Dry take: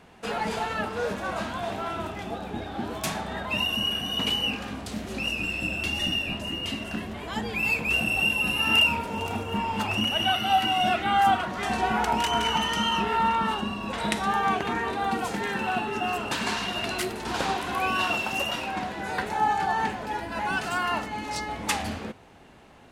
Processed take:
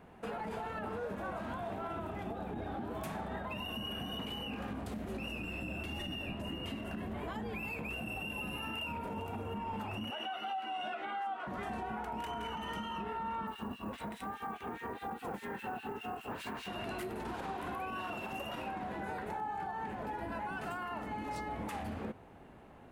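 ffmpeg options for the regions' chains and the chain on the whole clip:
-filter_complex "[0:a]asettb=1/sr,asplit=3[a][b][c];[a]atrim=end=10.114[d];[b]atrim=start=10.11:end=11.47,asetpts=PTS-STARTPTS,afade=t=in:d=0.004:c=qsin,afade=t=out:st=1.356:d=0.004:c=qsin,highpass=460,lowpass=6.8k,asplit=2[e][f];[f]adelay=13,volume=-4dB[g];[e][g]amix=inputs=2:normalize=0,atrim=end_sample=59976[h];[c]atrim=start=11.466[i];[d][h]acrossfade=d=0.004:c1=hsin:c2=qsin[j];[j][i]acrossfade=d=0.004:c1=qsin:c2=hsin,asettb=1/sr,asplit=3[k][l][m];[k]atrim=end=13.474[n];[l]atrim=start=13.47:end=16.68,asetpts=PTS-STARTPTS,afade=t=in:d=0.004:c=qsin,afade=t=out:st=3.206:d=0.004:c=qsin,asplit=5[o][p][q][r][s];[p]adelay=83,afreqshift=35,volume=-5.5dB[t];[q]adelay=166,afreqshift=70,volume=-14.6dB[u];[r]adelay=249,afreqshift=105,volume=-23.7dB[v];[s]adelay=332,afreqshift=140,volume=-32.9dB[w];[o][t][u][v][w]amix=inputs=5:normalize=0,atrim=end_sample=141561,acrossover=split=2200[x][y];[x]aeval=exprs='val(0)*(1-1/2+1/2*cos(2*PI*4.9*n/s))':c=same[z];[y]aeval=exprs='val(0)*(1-1/2-1/2*cos(2*PI*4.9*n/s))':c=same[aa];[z][aa]amix=inputs=2:normalize=0,acrusher=bits=5:mode=log:mix=0:aa=0.000001[ab];[m]atrim=start=16.676[ac];[n][ab]acrossfade=d=0.004:c1=hsin:c2=qsin[ad];[ad][ac]acrossfade=d=0.004:c1=qsin:c2=hsin,equalizer=f=5.4k:t=o:w=2.2:g=-14.5,acompressor=threshold=-31dB:ratio=6,alimiter=level_in=5.5dB:limit=-24dB:level=0:latency=1:release=54,volume=-5.5dB,volume=-2dB"

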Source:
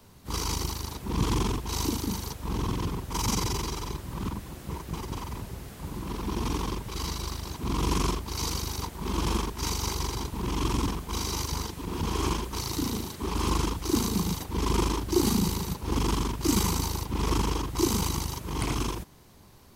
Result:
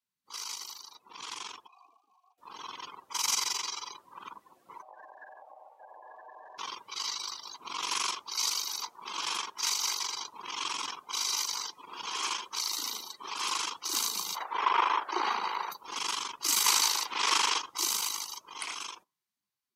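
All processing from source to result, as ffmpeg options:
-filter_complex "[0:a]asettb=1/sr,asplit=3[a][b][c];[a]atrim=end=1.674[d];[b]atrim=start=1.67:end=2.38,asetpts=PTS-STARTPTS,afade=t=in:d=0.004:c=qsin,afade=t=out:st=0.706:d=0.004:c=qsin,asplit=3[e][f][g];[e]bandpass=f=730:t=q:w=8,volume=0dB[h];[f]bandpass=f=1.09k:t=q:w=8,volume=-6dB[i];[g]bandpass=f=2.44k:t=q:w=8,volume=-9dB[j];[h][i][j]amix=inputs=3:normalize=0,aemphasis=mode=production:type=50kf[k];[c]atrim=start=2.376[l];[d][k]acrossfade=d=0.004:c1=hsin:c2=qsin[m];[m][l]acrossfade=d=0.004:c1=qsin:c2=hsin,asettb=1/sr,asplit=3[n][o][p];[n]atrim=end=4.824[q];[o]atrim=start=4.82:end=6.58,asetpts=PTS-STARTPTS,afade=t=in:d=0.004:c=qsin,afade=t=out:st=1.756:d=0.004:c=qsin,highshelf=f=2.4k:g=-11.5,aeval=exprs='val(0)*sin(2*PI*690*n/s)':c=same,acompressor=threshold=-37dB:ratio=16:attack=3.2:release=140:knee=1:detection=peak[r];[p]atrim=start=6.576[s];[q][r]acrossfade=d=0.004:c1=hsin:c2=qsin[t];[t][s]acrossfade=d=0.004:c1=qsin:c2=hsin,asettb=1/sr,asplit=3[u][v][w];[u]atrim=end=14.354[x];[v]atrim=start=14.35:end=15.72,asetpts=PTS-STARTPTS,afade=t=in:d=0.004:c=qsin,afade=t=out:st=1.366:d=0.004:c=qsin,acrossover=split=2900[y][z];[z]acompressor=threshold=-46dB:ratio=4:attack=1:release=60[aa];[y][aa]amix=inputs=2:normalize=0,highpass=f=510:p=1,equalizer=f=680:t=o:w=2.8:g=14[ab];[w]atrim=start=15.716[ac];[x][ab]acrossfade=d=0.004:c1=hsin:c2=qsin[ad];[ad][ac]acrossfade=d=0.004:c1=qsin:c2=hsin,asettb=1/sr,asplit=3[ae][af][ag];[ae]atrim=end=16.664[ah];[af]atrim=start=16.66:end=17.59,asetpts=PTS-STARTPTS,afade=t=in:d=0.004:c=qsin,afade=t=out:st=0.926:d=0.004:c=qsin,highpass=220,highshelf=f=11k:g=-10,acontrast=79[ai];[ag]atrim=start=17.586[aj];[ah][ai]acrossfade=d=0.004:c1=hsin:c2=qsin[ak];[ak][aj]acrossfade=d=0.004:c1=qsin:c2=hsin,afftdn=nr=28:nf=-43,highpass=1.5k,dynaudnorm=f=700:g=7:m=8.5dB,volume=-3.5dB"

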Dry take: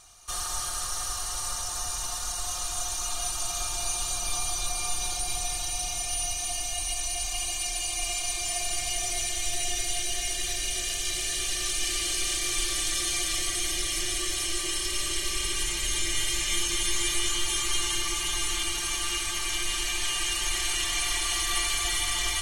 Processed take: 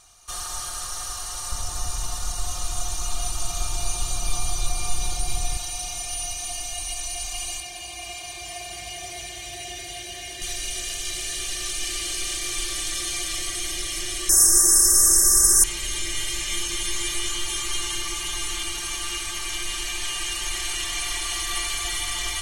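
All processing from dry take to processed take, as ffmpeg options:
-filter_complex "[0:a]asettb=1/sr,asplit=3[a][b][c];[a]atrim=end=1.524[d];[b]atrim=start=1.52:end=5.57,asetpts=PTS-STARTPTS,afade=t=in:d=0.004:c=qsin,afade=t=out:st=4.046:d=0.004:c=qsin,lowshelf=f=290:g=11,bandreject=f=1.6k:w=29[e];[c]atrim=start=5.566[f];[d][e]acrossfade=d=0.004:c1=hsin:c2=qsin[g];[g][f]acrossfade=d=0.004:c1=qsin:c2=hsin,asettb=1/sr,asplit=3[h][i][j];[h]atrim=end=7.604[k];[i]atrim=start=7.6:end=10.42,asetpts=PTS-STARTPTS,afade=t=in:d=0.004:c=qsin,afade=t=out:st=2.816:d=0.004:c=qsin,highpass=f=49:w=0.5412,highpass=f=49:w=1.3066,equalizer=f=8.6k:t=o:w=1.9:g=-9,bandreject=f=1.3k:w=5.1[l];[j]atrim=start=10.416[m];[k][l]acrossfade=d=0.004:c1=hsin:c2=qsin[n];[n][m]acrossfade=d=0.004:c1=qsin:c2=hsin,asettb=1/sr,asplit=3[o][p][q];[o]atrim=end=14.294[r];[p]atrim=start=14.29:end=15.64,asetpts=PTS-STARTPTS,afade=t=in:d=0.004:c=qsin,afade=t=out:st=1.346:d=0.004:c=qsin,aemphasis=mode=production:type=75kf,acontrast=40,asuperstop=centerf=3100:order=12:qfactor=0.85[s];[q]atrim=start=15.636[t];[r][s]acrossfade=d=0.004:c1=hsin:c2=qsin[u];[u][t]acrossfade=d=0.004:c1=qsin:c2=hsin"

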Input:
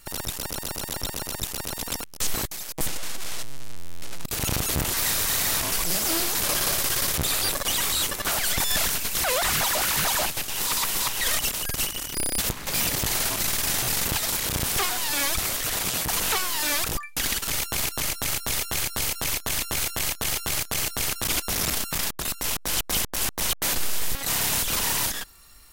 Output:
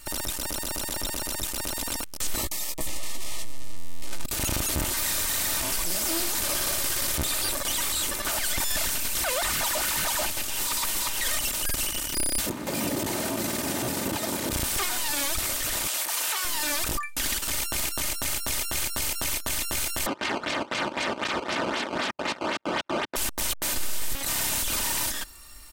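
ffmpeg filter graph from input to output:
-filter_complex "[0:a]asettb=1/sr,asplit=3[a][b][c];[a]atrim=end=2.364[d];[b]atrim=start=2.36:end=4.07,asetpts=PTS-STARTPTS,afade=t=in:d=0.004:c=qsin,afade=t=out:st=1.706:d=0.004:c=qsin,asuperstop=centerf=1500:order=20:qfactor=4.3,asplit=2[e][f];[f]adelay=16,volume=-8dB[g];[e][g]amix=inputs=2:normalize=0,atrim=end_sample=75411[h];[c]atrim=start=4.066[i];[d][h]acrossfade=d=0.004:c1=hsin:c2=qsin[j];[j][i]acrossfade=d=0.004:c1=qsin:c2=hsin,asettb=1/sr,asplit=3[k][l][m];[k]atrim=end=12.464[n];[l]atrim=start=12.46:end=14.52,asetpts=PTS-STARTPTS,afade=t=in:d=0.004:c=qsin,afade=t=out:st=2.056:d=0.004:c=qsin,highpass=190,tiltshelf=f=790:g=10[o];[m]atrim=start=14.516[p];[n][o]acrossfade=d=0.004:c1=hsin:c2=qsin[q];[q][p]acrossfade=d=0.004:c1=qsin:c2=hsin,asettb=1/sr,asplit=3[r][s][t];[r]atrim=end=15.874[u];[s]atrim=start=15.87:end=16.45,asetpts=PTS-STARTPTS,afade=t=in:d=0.004:c=qsin,afade=t=out:st=0.576:d=0.004:c=qsin,highpass=590,asplit=2[v][w];[w]adelay=34,volume=-12.5dB[x];[v][x]amix=inputs=2:normalize=0,atrim=end_sample=25578[y];[t]atrim=start=16.446[z];[u][y]acrossfade=d=0.004:c1=hsin:c2=qsin[aa];[aa][z]acrossfade=d=0.004:c1=qsin:c2=hsin,asettb=1/sr,asplit=3[ab][ac][ad];[ab]atrim=end=20.064[ae];[ac]atrim=start=20.06:end=23.16,asetpts=PTS-STARTPTS,afade=t=in:d=0.004:c=qsin,afade=t=out:st=3.096:d=0.004:c=qsin,acrusher=samples=14:mix=1:aa=0.000001:lfo=1:lforange=22.4:lforate=3.9,highpass=190,lowpass=4k[af];[ad]atrim=start=23.156[ag];[ae][af]acrossfade=d=0.004:c1=hsin:c2=qsin[ah];[ah][ag]acrossfade=d=0.004:c1=qsin:c2=hsin,equalizer=f=8.3k:w=4.1:g=3.5,aecho=1:1:3.3:0.4,alimiter=limit=-22dB:level=0:latency=1:release=16,volume=3dB"

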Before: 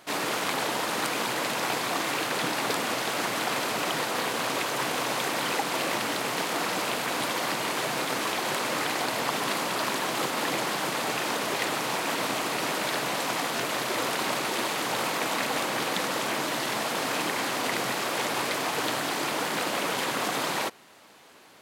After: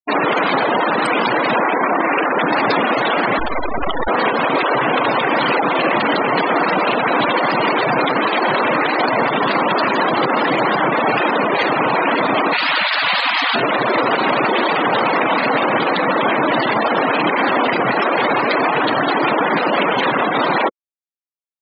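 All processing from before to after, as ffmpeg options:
-filter_complex "[0:a]asettb=1/sr,asplit=3[a][b][c];[a]atrim=end=1.554[d];[b]atrim=start=1.55:end=2.48,asetpts=PTS-STARTPTS,afade=t=in:d=0.004:c=qsin,afade=t=out:st=0.926:d=0.004:c=qsin,highpass=f=150:w=0.5412,highpass=f=150:w=1.3066,highshelf=f=8k:g=-8.5,adynamicsmooth=sensitivity=7:basefreq=590[e];[c]atrim=start=2.476[f];[d][e]acrossfade=d=0.004:c1=hsin:c2=qsin[g];[g][f]acrossfade=d=0.004:c1=qsin:c2=hsin,asettb=1/sr,asplit=3[h][i][j];[h]atrim=end=3.394[k];[i]atrim=start=3.39:end=4.08,asetpts=PTS-STARTPTS,afade=t=in:d=0.004:c=qsin,afade=t=out:st=0.686:d=0.004:c=qsin,lowshelf=f=68:g=-4,acrusher=bits=4:dc=4:mix=0:aa=0.000001,aeval=exprs='val(0)+0.002*(sin(2*PI*50*n/s)+sin(2*PI*2*50*n/s)/2+sin(2*PI*3*50*n/s)/3+sin(2*PI*4*50*n/s)/4+sin(2*PI*5*50*n/s)/5)':c=same[l];[j]atrim=start=4.076[m];[k][l]acrossfade=d=0.004:c1=hsin:c2=qsin[n];[n][m]acrossfade=d=0.004:c1=qsin:c2=hsin,asettb=1/sr,asplit=3[o][p][q];[o]atrim=end=12.534[r];[p]atrim=start=12.53:end=13.55,asetpts=PTS-STARTPTS,afade=t=in:d=0.004:c=qsin,afade=t=out:st=1.016:d=0.004:c=qsin,equalizer=f=400:w=0.49:g=-14.5,acontrast=38,highpass=170,lowpass=5.6k[s];[q]atrim=start=13.546[t];[r][s]acrossfade=d=0.004:c1=hsin:c2=qsin[u];[u][t]acrossfade=d=0.004:c1=qsin:c2=hsin,afftfilt=real='re*gte(hypot(re,im),0.0501)':imag='im*gte(hypot(re,im),0.0501)':win_size=1024:overlap=0.75,anlmdn=0.158,alimiter=level_in=24dB:limit=-1dB:release=50:level=0:latency=1,volume=-6.5dB"

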